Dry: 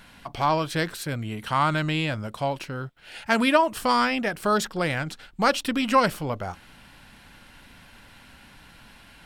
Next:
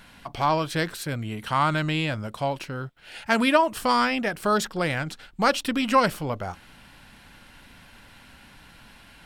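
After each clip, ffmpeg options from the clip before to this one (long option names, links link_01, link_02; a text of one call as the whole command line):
ffmpeg -i in.wav -af anull out.wav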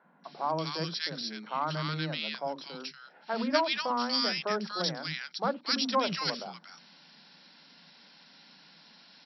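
ffmpeg -i in.wav -filter_complex "[0:a]aexciter=amount=5:drive=4.1:freq=4000,afftfilt=real='re*between(b*sr/4096,150,5700)':imag='im*between(b*sr/4096,150,5700)':win_size=4096:overlap=0.75,acrossover=split=310|1400[link_01][link_02][link_03];[link_01]adelay=50[link_04];[link_03]adelay=240[link_05];[link_04][link_02][link_05]amix=inputs=3:normalize=0,volume=-6.5dB" out.wav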